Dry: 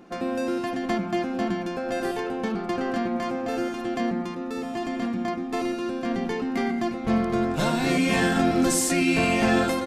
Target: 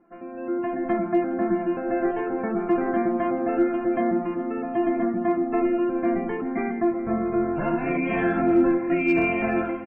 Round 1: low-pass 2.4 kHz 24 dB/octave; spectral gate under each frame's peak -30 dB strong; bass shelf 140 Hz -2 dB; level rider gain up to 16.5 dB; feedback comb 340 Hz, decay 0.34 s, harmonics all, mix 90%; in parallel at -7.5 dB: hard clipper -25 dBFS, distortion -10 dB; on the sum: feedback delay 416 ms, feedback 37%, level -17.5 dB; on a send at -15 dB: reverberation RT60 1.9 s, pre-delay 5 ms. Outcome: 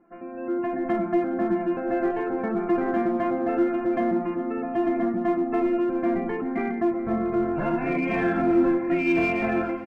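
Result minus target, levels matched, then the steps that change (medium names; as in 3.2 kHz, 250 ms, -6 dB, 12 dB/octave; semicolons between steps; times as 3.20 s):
hard clipper: distortion +17 dB
change: hard clipper -17 dBFS, distortion -27 dB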